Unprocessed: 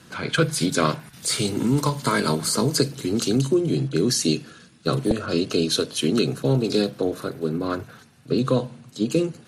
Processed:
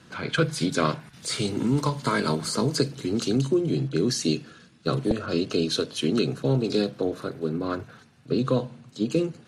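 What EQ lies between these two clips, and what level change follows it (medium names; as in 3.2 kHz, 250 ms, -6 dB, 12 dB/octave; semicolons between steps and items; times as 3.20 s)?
distance through air 50 m; -2.5 dB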